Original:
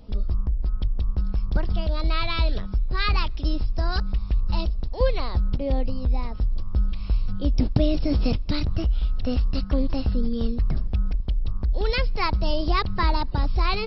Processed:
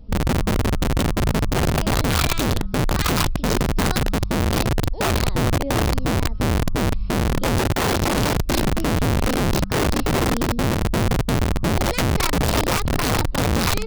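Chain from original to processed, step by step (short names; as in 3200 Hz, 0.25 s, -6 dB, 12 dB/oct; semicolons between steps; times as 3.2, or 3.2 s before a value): tracing distortion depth 0.029 ms; low shelf 350 Hz +11 dB; wrapped overs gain 9.5 dB; gain -5.5 dB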